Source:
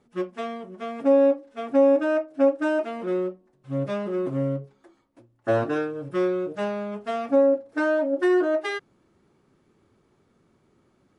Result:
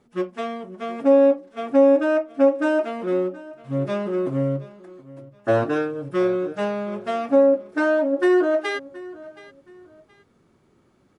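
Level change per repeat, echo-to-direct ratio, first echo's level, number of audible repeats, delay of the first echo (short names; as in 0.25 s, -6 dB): -11.0 dB, -19.0 dB, -19.5 dB, 2, 0.723 s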